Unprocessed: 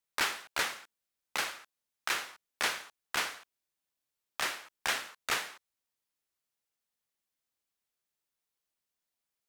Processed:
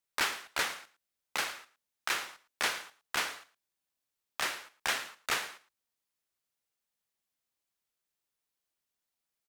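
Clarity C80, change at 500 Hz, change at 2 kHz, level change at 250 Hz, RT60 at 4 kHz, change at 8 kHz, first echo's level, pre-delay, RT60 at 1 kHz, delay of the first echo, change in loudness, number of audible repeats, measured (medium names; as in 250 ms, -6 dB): no reverb, 0.0 dB, 0.0 dB, 0.0 dB, no reverb, 0.0 dB, -18.0 dB, no reverb, no reverb, 112 ms, 0.0 dB, 1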